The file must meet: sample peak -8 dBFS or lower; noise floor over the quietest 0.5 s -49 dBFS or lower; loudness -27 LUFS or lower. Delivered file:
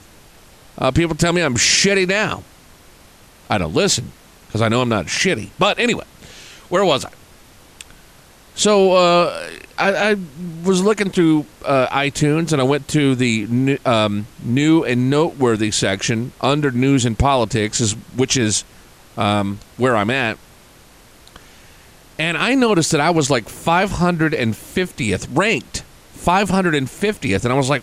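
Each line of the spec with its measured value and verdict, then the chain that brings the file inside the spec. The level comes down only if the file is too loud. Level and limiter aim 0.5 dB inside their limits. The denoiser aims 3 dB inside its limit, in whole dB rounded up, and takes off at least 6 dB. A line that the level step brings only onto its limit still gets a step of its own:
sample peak -4.0 dBFS: fail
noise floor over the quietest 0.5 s -46 dBFS: fail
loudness -17.5 LUFS: fail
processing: trim -10 dB

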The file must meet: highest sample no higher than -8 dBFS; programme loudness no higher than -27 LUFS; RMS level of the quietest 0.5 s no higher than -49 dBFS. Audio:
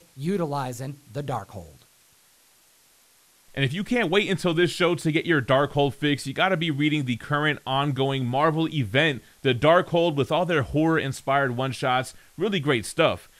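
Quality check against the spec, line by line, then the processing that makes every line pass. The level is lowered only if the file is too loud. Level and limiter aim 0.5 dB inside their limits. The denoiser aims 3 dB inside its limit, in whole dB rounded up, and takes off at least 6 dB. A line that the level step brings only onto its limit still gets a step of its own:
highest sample -6.0 dBFS: fail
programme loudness -23.5 LUFS: fail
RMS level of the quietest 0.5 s -59 dBFS: pass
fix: trim -4 dB

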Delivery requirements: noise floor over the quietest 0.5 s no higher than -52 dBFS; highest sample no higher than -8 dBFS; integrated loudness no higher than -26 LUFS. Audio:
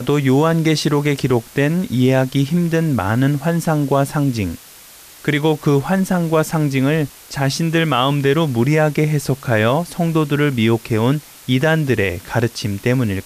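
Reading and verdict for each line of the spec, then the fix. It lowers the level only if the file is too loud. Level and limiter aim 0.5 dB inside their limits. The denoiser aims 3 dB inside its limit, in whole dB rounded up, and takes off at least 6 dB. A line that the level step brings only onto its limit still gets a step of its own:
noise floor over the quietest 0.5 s -42 dBFS: fail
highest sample -5.0 dBFS: fail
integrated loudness -17.5 LUFS: fail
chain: noise reduction 6 dB, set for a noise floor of -42 dBFS; trim -9 dB

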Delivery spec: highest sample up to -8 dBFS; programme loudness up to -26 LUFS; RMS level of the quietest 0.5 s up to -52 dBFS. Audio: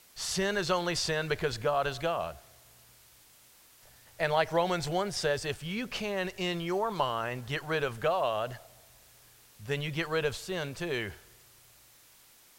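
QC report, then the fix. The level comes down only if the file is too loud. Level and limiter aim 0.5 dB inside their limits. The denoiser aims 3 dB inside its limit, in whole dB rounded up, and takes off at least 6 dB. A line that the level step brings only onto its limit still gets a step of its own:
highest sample -14.0 dBFS: pass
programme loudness -31.5 LUFS: pass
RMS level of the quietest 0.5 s -59 dBFS: pass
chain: none needed

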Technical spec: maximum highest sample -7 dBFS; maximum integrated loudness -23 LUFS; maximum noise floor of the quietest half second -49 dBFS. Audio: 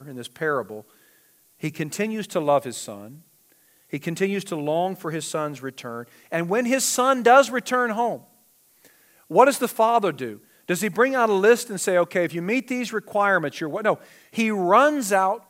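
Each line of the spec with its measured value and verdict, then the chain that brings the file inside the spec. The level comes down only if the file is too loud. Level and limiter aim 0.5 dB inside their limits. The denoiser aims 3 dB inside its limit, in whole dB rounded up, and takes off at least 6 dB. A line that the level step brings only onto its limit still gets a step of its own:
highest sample -2.0 dBFS: fail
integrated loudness -22.0 LUFS: fail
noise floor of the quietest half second -59 dBFS: pass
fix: trim -1.5 dB; peak limiter -7.5 dBFS

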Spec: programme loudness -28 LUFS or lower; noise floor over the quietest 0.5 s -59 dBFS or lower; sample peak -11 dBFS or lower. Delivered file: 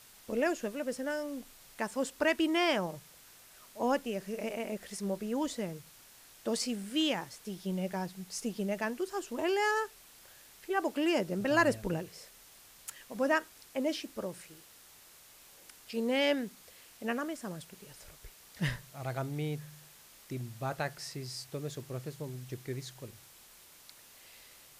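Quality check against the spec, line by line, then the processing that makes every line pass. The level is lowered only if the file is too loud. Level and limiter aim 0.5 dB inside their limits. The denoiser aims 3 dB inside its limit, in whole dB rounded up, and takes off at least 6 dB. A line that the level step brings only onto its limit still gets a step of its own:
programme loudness -34.5 LUFS: pass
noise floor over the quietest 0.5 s -57 dBFS: fail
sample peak -14.0 dBFS: pass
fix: noise reduction 6 dB, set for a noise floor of -57 dBFS

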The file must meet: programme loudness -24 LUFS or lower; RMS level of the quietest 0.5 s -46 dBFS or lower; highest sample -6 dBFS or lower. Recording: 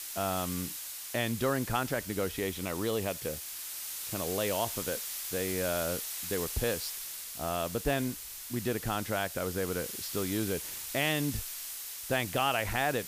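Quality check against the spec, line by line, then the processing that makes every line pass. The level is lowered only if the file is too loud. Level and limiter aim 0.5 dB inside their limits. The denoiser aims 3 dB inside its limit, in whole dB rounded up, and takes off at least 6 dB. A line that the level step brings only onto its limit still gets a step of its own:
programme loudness -32.5 LUFS: pass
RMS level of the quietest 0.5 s -41 dBFS: fail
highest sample -15.5 dBFS: pass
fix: noise reduction 8 dB, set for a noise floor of -41 dBFS

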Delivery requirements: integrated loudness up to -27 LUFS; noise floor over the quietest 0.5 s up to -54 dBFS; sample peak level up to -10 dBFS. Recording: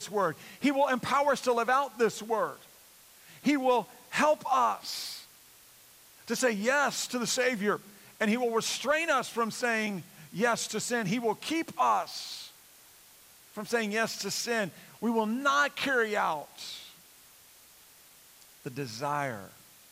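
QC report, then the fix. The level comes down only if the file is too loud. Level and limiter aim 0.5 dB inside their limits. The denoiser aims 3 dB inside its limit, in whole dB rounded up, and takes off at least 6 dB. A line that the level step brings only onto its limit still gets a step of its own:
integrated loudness -29.5 LUFS: pass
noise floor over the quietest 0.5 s -56 dBFS: pass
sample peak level -15.5 dBFS: pass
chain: none needed

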